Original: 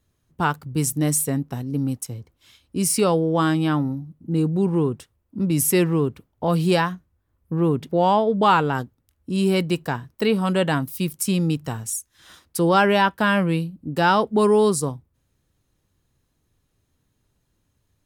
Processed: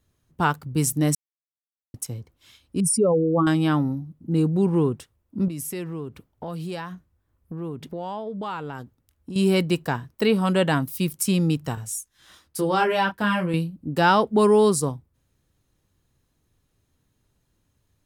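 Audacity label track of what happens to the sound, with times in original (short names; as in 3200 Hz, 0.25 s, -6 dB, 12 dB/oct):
1.150000	1.940000	mute
2.800000	3.470000	spectral contrast raised exponent 2.3
5.480000	9.360000	compressor 3:1, threshold -33 dBFS
11.750000	13.540000	detuned doubles each way 12 cents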